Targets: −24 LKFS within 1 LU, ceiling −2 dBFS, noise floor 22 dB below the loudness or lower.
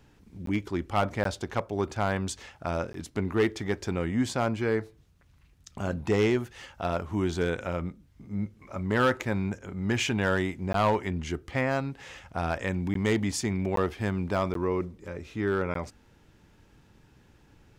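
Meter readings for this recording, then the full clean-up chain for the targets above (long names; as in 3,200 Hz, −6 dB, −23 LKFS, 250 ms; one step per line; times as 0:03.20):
share of clipped samples 0.4%; peaks flattened at −17.5 dBFS; number of dropouts 8; longest dropout 13 ms; integrated loudness −29.5 LKFS; sample peak −17.5 dBFS; target loudness −24.0 LKFS
→ clipped peaks rebuilt −17.5 dBFS
repair the gap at 0:00.46/0:01.24/0:02.93/0:10.73/0:12.94/0:13.76/0:14.54/0:15.74, 13 ms
level +5.5 dB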